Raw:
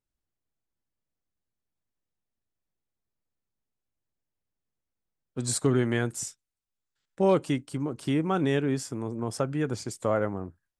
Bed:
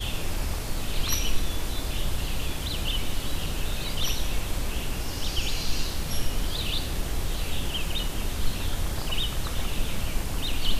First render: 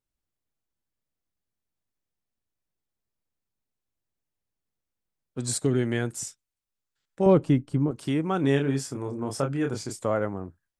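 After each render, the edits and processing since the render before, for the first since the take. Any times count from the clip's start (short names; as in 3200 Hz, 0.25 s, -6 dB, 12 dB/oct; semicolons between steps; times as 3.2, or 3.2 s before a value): 5.55–6.04 bell 1100 Hz -11.5 dB -> -4 dB; 7.26–7.91 tilt -3 dB/oct; 8.41–10.04 doubler 29 ms -4.5 dB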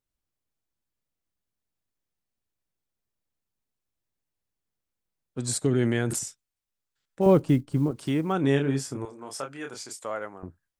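5.71–6.19 sustainer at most 21 dB/s; 7.21–8.33 block floating point 7-bit; 9.05–10.43 HPF 1200 Hz 6 dB/oct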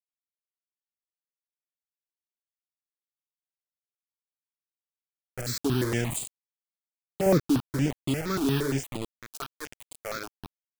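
bit-crush 5-bit; step phaser 8.6 Hz 530–5700 Hz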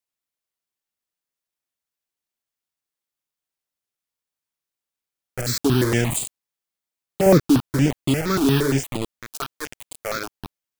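gain +7.5 dB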